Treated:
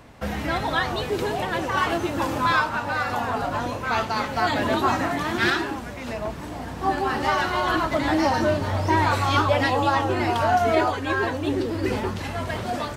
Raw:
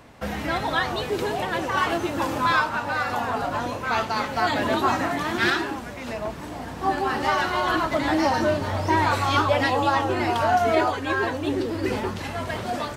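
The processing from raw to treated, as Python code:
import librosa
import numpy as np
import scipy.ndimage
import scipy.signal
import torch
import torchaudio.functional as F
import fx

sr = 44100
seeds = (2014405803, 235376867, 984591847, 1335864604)

y = fx.low_shelf(x, sr, hz=120.0, db=5.0)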